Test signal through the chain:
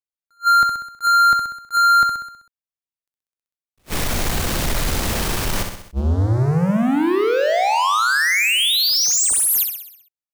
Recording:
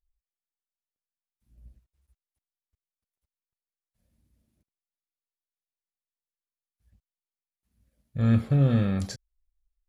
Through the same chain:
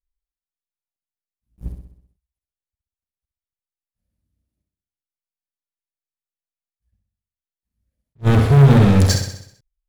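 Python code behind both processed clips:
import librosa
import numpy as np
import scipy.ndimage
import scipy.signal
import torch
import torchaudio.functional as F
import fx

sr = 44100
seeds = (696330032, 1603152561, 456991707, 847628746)

y = fx.low_shelf(x, sr, hz=130.0, db=6.0)
y = fx.leveller(y, sr, passes=5)
y = fx.echo_feedback(y, sr, ms=64, feedback_pct=54, wet_db=-6)
y = fx.attack_slew(y, sr, db_per_s=480.0)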